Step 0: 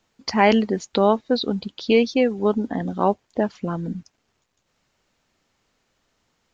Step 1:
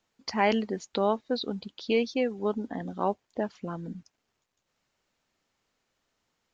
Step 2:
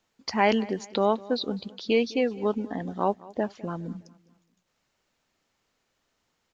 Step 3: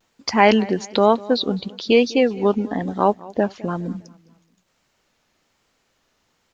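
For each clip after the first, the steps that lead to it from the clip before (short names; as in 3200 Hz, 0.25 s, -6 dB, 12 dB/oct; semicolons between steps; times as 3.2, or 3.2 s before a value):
low shelf 230 Hz -4 dB; gain -7.5 dB
feedback echo 0.206 s, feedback 41%, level -21 dB; gain +2.5 dB
vibrato 1.1 Hz 56 cents; gain +8 dB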